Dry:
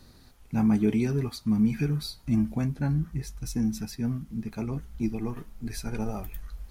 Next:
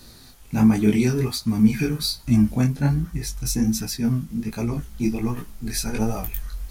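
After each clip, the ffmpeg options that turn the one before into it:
ffmpeg -i in.wav -af "highshelf=frequency=3200:gain=9,flanger=delay=16.5:depth=7.9:speed=1.3,volume=9dB" out.wav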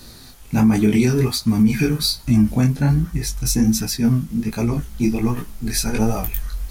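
ffmpeg -i in.wav -af "alimiter=level_in=11.5dB:limit=-1dB:release=50:level=0:latency=1,volume=-6.5dB" out.wav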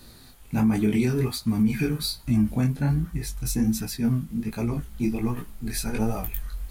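ffmpeg -i in.wav -af "equalizer=frequency=5700:width=2.3:gain=-6.5,volume=-6.5dB" out.wav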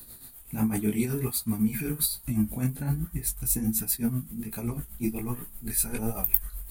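ffmpeg -i in.wav -filter_complex "[0:a]acrossover=split=460[link_01][link_02];[link_02]aexciter=amount=7:drive=2.5:freq=7900[link_03];[link_01][link_03]amix=inputs=2:normalize=0,tremolo=f=7.9:d=0.61,volume=-2.5dB" out.wav

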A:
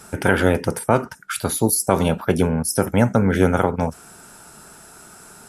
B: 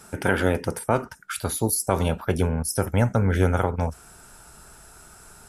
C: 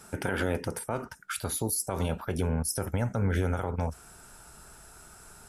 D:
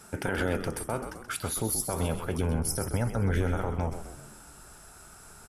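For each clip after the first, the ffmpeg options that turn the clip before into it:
ffmpeg -i in.wav -af "asubboost=boost=6.5:cutoff=83,volume=-4.5dB" out.wav
ffmpeg -i in.wav -af "alimiter=limit=-15dB:level=0:latency=1:release=83,volume=-3dB" out.wav
ffmpeg -i in.wav -filter_complex "[0:a]asplit=7[link_01][link_02][link_03][link_04][link_05][link_06][link_07];[link_02]adelay=129,afreqshift=-75,volume=-9dB[link_08];[link_03]adelay=258,afreqshift=-150,volume=-15dB[link_09];[link_04]adelay=387,afreqshift=-225,volume=-21dB[link_10];[link_05]adelay=516,afreqshift=-300,volume=-27.1dB[link_11];[link_06]adelay=645,afreqshift=-375,volume=-33.1dB[link_12];[link_07]adelay=774,afreqshift=-450,volume=-39.1dB[link_13];[link_01][link_08][link_09][link_10][link_11][link_12][link_13]amix=inputs=7:normalize=0" out.wav

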